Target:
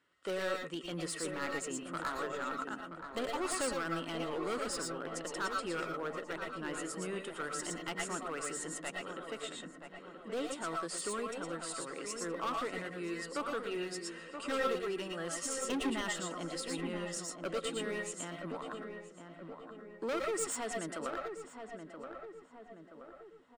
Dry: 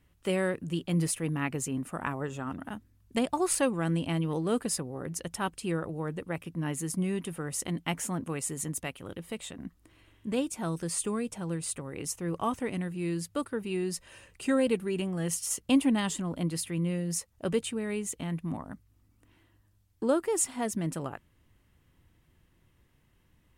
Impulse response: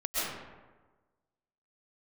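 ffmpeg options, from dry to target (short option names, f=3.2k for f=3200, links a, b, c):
-filter_complex "[0:a]highpass=400,equalizer=f=780:t=q:w=4:g=-5,equalizer=f=1.4k:t=q:w=4:g=8,equalizer=f=2.4k:t=q:w=4:g=-5,equalizer=f=6.2k:t=q:w=4:g=-7,lowpass=f=7.7k:w=0.5412,lowpass=f=7.7k:w=1.3066,volume=31dB,asoftclip=hard,volume=-31dB,asplit=2[a][b];[b]adelay=976,lowpass=f=1.6k:p=1,volume=-7dB,asplit=2[c][d];[d]adelay=976,lowpass=f=1.6k:p=1,volume=0.54,asplit=2[e][f];[f]adelay=976,lowpass=f=1.6k:p=1,volume=0.54,asplit=2[g][h];[h]adelay=976,lowpass=f=1.6k:p=1,volume=0.54,asplit=2[i][j];[j]adelay=976,lowpass=f=1.6k:p=1,volume=0.54,asplit=2[k][l];[l]adelay=976,lowpass=f=1.6k:p=1,volume=0.54,asplit=2[m][n];[n]adelay=976,lowpass=f=1.6k:p=1,volume=0.54[o];[a][c][e][g][i][k][m][o]amix=inputs=8:normalize=0[p];[1:a]atrim=start_sample=2205,afade=t=out:st=0.17:d=0.01,atrim=end_sample=7938[q];[p][q]afir=irnorm=-1:irlink=0"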